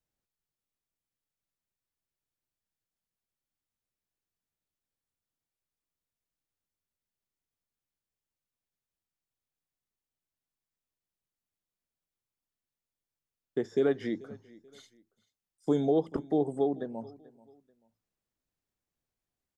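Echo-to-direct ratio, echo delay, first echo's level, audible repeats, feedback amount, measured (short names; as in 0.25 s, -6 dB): -21.0 dB, 0.436 s, -21.5 dB, 2, 31%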